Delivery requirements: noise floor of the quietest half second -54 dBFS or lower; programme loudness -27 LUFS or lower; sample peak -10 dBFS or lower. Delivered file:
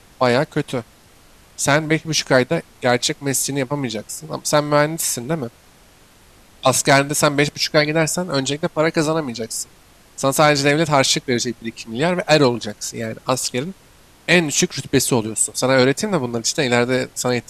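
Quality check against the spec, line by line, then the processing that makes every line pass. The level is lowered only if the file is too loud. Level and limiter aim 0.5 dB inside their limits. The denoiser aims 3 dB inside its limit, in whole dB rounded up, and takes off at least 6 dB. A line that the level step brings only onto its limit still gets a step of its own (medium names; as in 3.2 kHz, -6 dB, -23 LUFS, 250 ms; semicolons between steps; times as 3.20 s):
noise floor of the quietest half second -50 dBFS: fail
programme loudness -18.5 LUFS: fail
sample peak -3.0 dBFS: fail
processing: trim -9 dB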